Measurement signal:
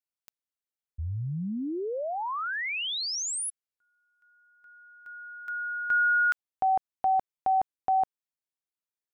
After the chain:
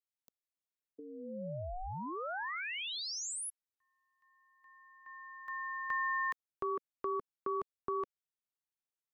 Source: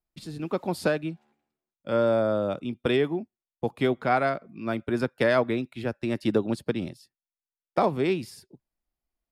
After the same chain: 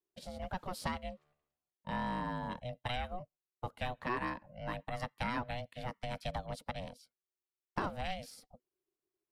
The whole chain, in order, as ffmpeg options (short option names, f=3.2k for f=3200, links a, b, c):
-filter_complex "[0:a]acrossover=split=160|1100[a][b][c];[a]acompressor=threshold=-44dB:ratio=6[d];[b]acompressor=threshold=-33dB:ratio=2.5[e];[c]acompressor=threshold=-31dB:ratio=3[f];[d][e][f]amix=inputs=3:normalize=0,aeval=exprs='val(0)*sin(2*PI*370*n/s)':c=same,volume=-4dB"